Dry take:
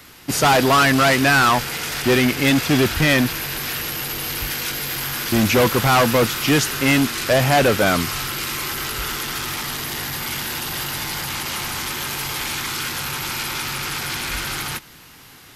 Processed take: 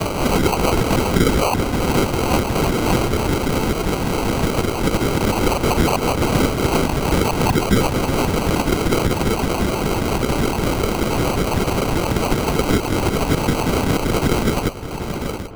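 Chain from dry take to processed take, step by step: spectral delay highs early, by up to 0.53 s; HPF 170 Hz; bell 1500 Hz +15 dB 0.5 oct; in parallel at -1 dB: level quantiser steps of 22 dB; on the sum: limiter -10 dBFS, peak gain reduction 14 dB; noise vocoder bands 12; LFO high-pass saw down 5.2 Hz 730–1900 Hz; sample-and-hold 25×; on a send: darkening echo 0.683 s, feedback 28%, low-pass 2400 Hz, level -20 dB; on the sum: three-band squash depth 70%; gain -1.5 dB

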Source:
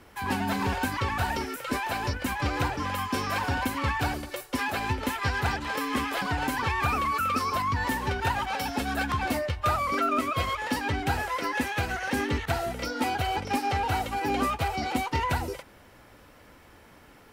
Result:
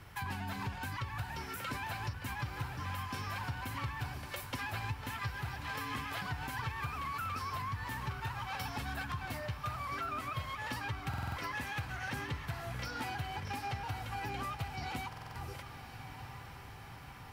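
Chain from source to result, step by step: ten-band EQ 125 Hz +11 dB, 250 Hz -9 dB, 500 Hz -7 dB, 8000 Hz -3 dB; compressor 6:1, threshold -37 dBFS, peak gain reduction 17.5 dB; diffused feedback echo 1.067 s, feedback 64%, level -11.5 dB; on a send at -23.5 dB: reverb RT60 0.30 s, pre-delay 77 ms; on the sum: stuck buffer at 11.09/15.08, samples 2048, times 5

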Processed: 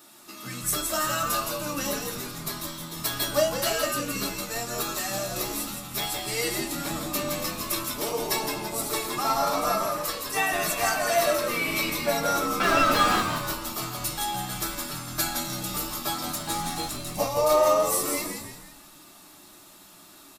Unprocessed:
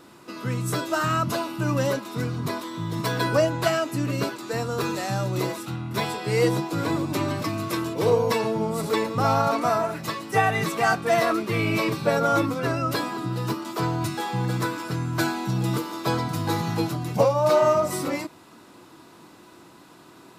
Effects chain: RIAA curve recording; notch comb 500 Hz; de-hum 110.1 Hz, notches 40; 12.6–13.21 overdrive pedal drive 35 dB, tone 1500 Hz, clips at -9 dBFS; flange 0.11 Hz, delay 8.8 ms, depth 7 ms, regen -66%; frequency-shifting echo 0.166 s, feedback 42%, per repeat -86 Hz, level -5 dB; reverb RT60 0.20 s, pre-delay 3 ms, DRR 3.5 dB; 16.35–17.18 decimation joined by straight lines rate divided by 2×

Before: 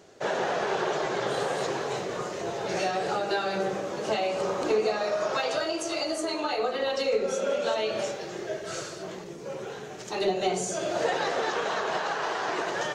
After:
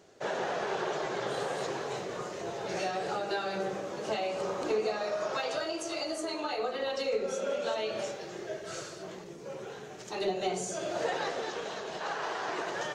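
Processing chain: 11.3–12 bell 1200 Hz -4 dB -> -10.5 dB 1.8 oct; gain -5 dB

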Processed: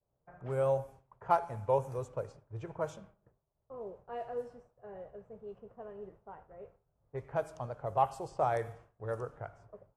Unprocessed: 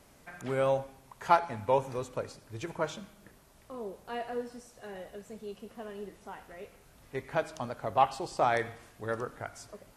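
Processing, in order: expander -47 dBFS; graphic EQ 125/250/500/2000/4000 Hz +7/-10/+4/-7/-11 dB; low-pass opened by the level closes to 1000 Hz, open at -27.5 dBFS; gain -3.5 dB

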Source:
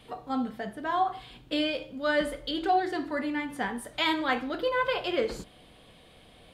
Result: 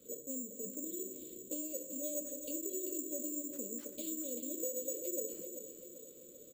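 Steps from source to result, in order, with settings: brick-wall FIR band-stop 600–3700 Hz; compressor, threshold -40 dBFS, peak gain reduction 16 dB; three-band isolator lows -20 dB, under 230 Hz, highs -13 dB, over 2300 Hz; feedback echo 0.39 s, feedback 53%, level -9.5 dB; careless resampling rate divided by 6×, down none, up zero stuff; high shelf 6400 Hz -9 dB; echo 0.253 s -13 dB

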